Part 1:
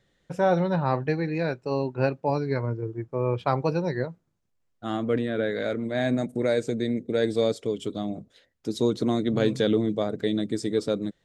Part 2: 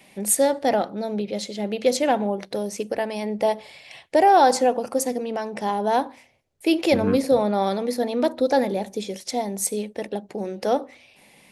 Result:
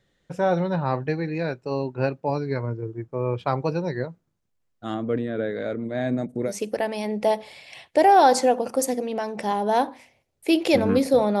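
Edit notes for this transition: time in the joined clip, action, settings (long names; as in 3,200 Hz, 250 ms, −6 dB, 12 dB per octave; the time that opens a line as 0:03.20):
part 1
0:04.94–0:06.53: high-shelf EQ 2,800 Hz −11 dB
0:06.49: continue with part 2 from 0:02.67, crossfade 0.08 s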